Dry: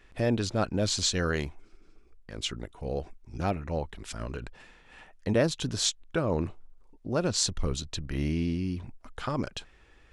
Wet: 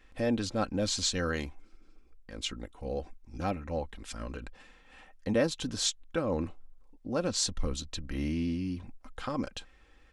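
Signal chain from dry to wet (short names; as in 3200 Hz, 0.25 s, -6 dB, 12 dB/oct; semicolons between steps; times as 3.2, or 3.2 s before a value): comb 3.8 ms, depth 49%; gain -3.5 dB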